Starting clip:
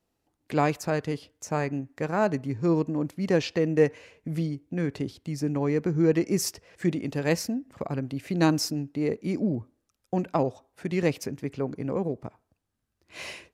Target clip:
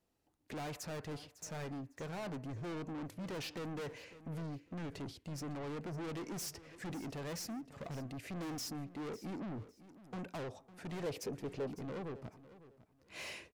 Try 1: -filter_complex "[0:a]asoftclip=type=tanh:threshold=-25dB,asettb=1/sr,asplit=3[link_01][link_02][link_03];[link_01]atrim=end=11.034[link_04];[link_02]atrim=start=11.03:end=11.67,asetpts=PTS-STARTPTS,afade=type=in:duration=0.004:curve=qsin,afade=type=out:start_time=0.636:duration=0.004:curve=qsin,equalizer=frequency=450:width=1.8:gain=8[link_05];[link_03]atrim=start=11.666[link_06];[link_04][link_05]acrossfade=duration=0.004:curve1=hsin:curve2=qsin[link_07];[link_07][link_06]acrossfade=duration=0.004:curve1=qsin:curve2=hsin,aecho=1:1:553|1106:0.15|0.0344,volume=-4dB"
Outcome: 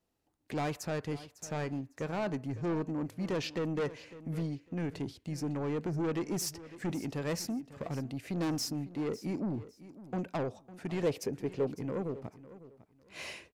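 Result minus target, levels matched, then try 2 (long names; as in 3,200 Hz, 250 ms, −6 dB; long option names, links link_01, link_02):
soft clipping: distortion −6 dB
-filter_complex "[0:a]asoftclip=type=tanh:threshold=-36.5dB,asettb=1/sr,asplit=3[link_01][link_02][link_03];[link_01]atrim=end=11.034[link_04];[link_02]atrim=start=11.03:end=11.67,asetpts=PTS-STARTPTS,afade=type=in:duration=0.004:curve=qsin,afade=type=out:start_time=0.636:duration=0.004:curve=qsin,equalizer=frequency=450:width=1.8:gain=8[link_05];[link_03]atrim=start=11.666[link_06];[link_04][link_05]acrossfade=duration=0.004:curve1=hsin:curve2=qsin[link_07];[link_07][link_06]acrossfade=duration=0.004:curve1=qsin:curve2=hsin,aecho=1:1:553|1106:0.15|0.0344,volume=-4dB"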